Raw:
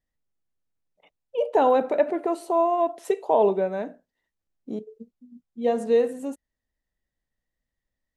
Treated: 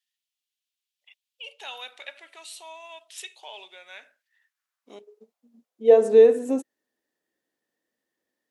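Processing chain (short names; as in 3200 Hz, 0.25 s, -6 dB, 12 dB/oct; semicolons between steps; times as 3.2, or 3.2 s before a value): in parallel at -3 dB: compressor, threshold -29 dBFS, peak gain reduction 13.5 dB; on the sum: high-pass sweep 3200 Hz -> 340 Hz, 3.63–5.93; speed mistake 25 fps video run at 24 fps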